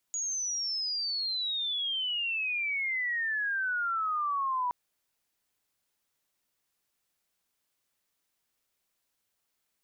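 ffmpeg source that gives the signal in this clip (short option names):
-f lavfi -i "aevalsrc='pow(10,(-30+3*t/4.57)/20)*sin(2*PI*6800*4.57/log(970/6800)*(exp(log(970/6800)*t/4.57)-1))':d=4.57:s=44100"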